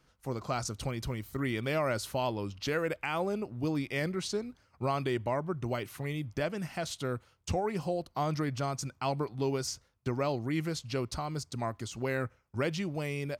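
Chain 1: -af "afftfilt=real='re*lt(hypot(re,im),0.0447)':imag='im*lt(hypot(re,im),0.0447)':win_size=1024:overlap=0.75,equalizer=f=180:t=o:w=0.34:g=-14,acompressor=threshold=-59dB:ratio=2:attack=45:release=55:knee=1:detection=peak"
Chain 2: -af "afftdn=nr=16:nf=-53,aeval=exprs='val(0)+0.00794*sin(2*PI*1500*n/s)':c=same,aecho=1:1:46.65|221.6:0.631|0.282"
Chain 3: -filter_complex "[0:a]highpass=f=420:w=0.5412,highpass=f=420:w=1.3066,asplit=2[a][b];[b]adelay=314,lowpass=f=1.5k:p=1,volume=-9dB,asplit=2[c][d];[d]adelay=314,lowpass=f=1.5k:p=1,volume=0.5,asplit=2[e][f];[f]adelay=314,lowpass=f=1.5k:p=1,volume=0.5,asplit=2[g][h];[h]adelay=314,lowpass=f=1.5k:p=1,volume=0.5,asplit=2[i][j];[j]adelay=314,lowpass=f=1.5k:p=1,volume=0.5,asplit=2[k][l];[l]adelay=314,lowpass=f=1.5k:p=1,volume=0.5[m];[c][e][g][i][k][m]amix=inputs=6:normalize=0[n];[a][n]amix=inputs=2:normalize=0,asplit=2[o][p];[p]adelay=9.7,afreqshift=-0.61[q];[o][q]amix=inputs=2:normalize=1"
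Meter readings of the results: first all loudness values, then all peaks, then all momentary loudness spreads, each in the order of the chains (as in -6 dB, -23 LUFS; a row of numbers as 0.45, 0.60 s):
-50.0, -32.0, -39.5 LUFS; -30.0, -16.0, -22.5 dBFS; 5, 4, 7 LU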